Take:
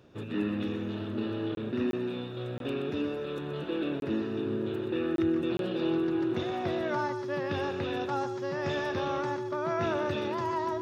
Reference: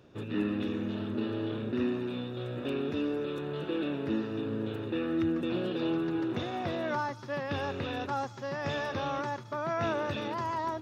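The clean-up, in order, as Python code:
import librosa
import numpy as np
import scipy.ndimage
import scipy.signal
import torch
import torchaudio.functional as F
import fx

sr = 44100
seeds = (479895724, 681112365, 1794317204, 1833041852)

y = fx.notch(x, sr, hz=370.0, q=30.0)
y = fx.fix_interpolate(y, sr, at_s=(1.55, 1.91, 2.58, 4.0, 5.16, 5.57), length_ms=22.0)
y = fx.fix_echo_inverse(y, sr, delay_ms=125, level_db=-10.0)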